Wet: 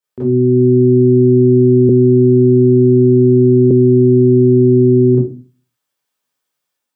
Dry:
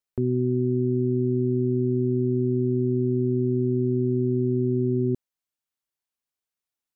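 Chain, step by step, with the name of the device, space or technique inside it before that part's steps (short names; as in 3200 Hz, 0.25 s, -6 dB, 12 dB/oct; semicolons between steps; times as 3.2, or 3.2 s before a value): far laptop microphone (reverb RT60 0.35 s, pre-delay 24 ms, DRR -10 dB; HPF 150 Hz 12 dB/oct; AGC gain up to 5 dB); 1.89–3.71 steep low-pass 540 Hz 36 dB/oct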